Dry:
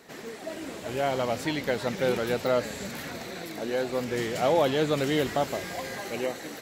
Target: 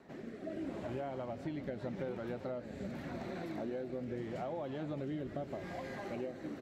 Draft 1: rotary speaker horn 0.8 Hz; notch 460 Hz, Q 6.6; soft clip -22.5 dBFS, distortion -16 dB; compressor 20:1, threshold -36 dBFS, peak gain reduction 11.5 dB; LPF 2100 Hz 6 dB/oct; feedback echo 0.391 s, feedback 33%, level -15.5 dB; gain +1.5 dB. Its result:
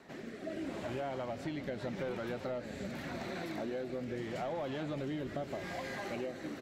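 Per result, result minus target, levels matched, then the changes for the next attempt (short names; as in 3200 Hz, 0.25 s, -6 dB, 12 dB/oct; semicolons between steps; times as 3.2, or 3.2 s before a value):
soft clip: distortion +14 dB; 2000 Hz band +4.0 dB
change: soft clip -13.5 dBFS, distortion -29 dB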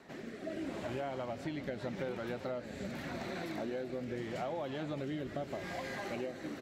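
2000 Hz band +4.5 dB
change: LPF 750 Hz 6 dB/oct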